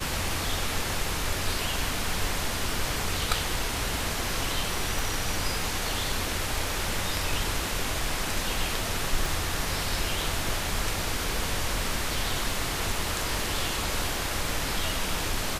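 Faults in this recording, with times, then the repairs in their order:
0:04.99: click
0:09.26: click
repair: click removal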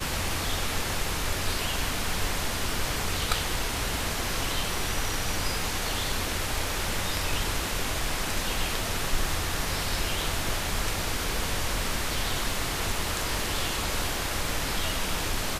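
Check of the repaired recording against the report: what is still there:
0:04.99: click
0:09.26: click

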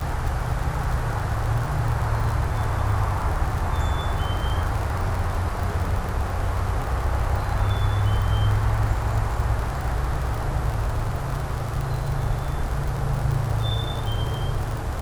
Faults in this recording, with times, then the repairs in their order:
surface crackle 46 per second −26 dBFS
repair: click removal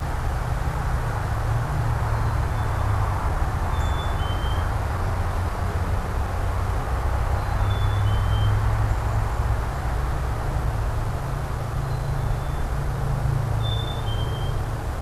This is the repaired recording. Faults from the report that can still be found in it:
none of them is left

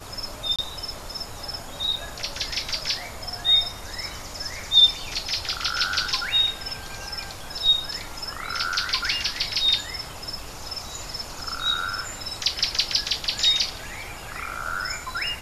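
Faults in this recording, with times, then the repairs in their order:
0:00.56–0:00.59: drop-out 26 ms
0:01.96: drop-out 3.8 ms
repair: repair the gap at 0:00.56, 26 ms
repair the gap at 0:01.96, 3.8 ms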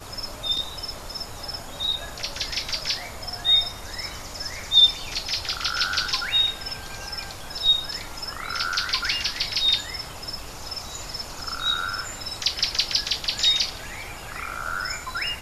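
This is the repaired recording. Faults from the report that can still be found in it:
none of them is left

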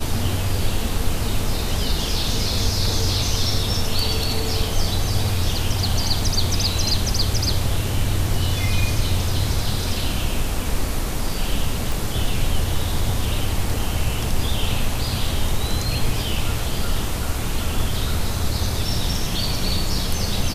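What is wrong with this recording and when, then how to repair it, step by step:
0:11.92: click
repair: click removal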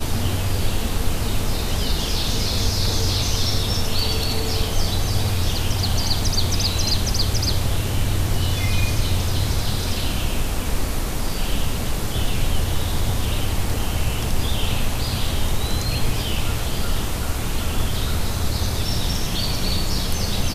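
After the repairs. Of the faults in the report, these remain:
none of them is left

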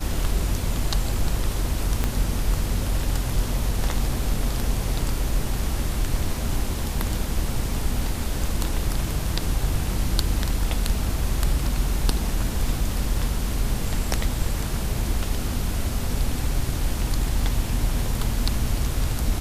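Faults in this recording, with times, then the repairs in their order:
0:02.04: click −9 dBFS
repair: click removal

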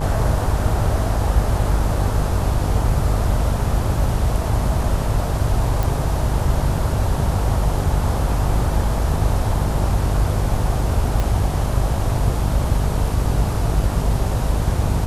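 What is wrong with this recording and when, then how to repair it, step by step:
mains buzz 50 Hz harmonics 20 −23 dBFS
0:05.83: click
0:11.20: click −9 dBFS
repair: click removal
hum removal 50 Hz, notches 20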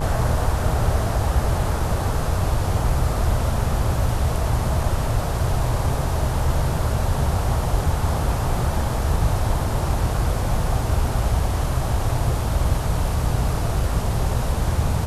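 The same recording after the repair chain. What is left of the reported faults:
0:11.20: click

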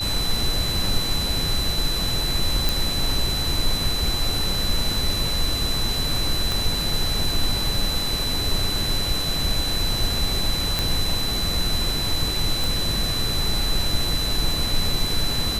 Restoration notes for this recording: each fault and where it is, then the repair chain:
whistle 4,000 Hz −25 dBFS
0:02.69: click
0:06.52: click
0:10.79: click
0:12.64: click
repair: click removal
notch filter 4,000 Hz, Q 30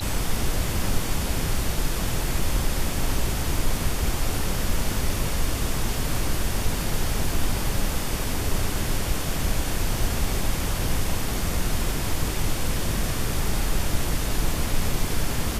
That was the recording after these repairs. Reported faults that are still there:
0:06.52: click

